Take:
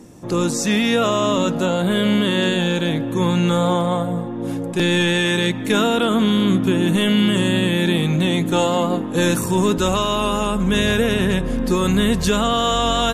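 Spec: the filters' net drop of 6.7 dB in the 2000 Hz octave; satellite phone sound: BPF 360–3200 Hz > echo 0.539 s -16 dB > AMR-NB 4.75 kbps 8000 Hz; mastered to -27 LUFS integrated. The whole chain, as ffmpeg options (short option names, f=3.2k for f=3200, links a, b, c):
-af "highpass=360,lowpass=3.2k,equalizer=f=2k:t=o:g=-8,aecho=1:1:539:0.158,volume=-2dB" -ar 8000 -c:a libopencore_amrnb -b:a 4750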